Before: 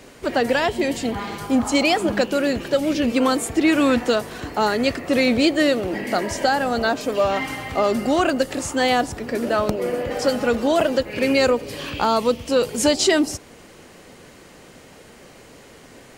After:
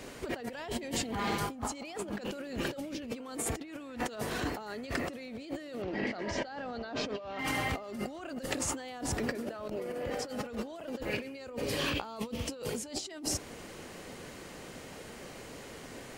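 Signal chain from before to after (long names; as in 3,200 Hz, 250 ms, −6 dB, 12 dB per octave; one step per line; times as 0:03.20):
compressor whose output falls as the input rises −30 dBFS, ratio −1
0:05.82–0:07.39: low-pass filter 5,300 Hz 24 dB per octave
level −8.5 dB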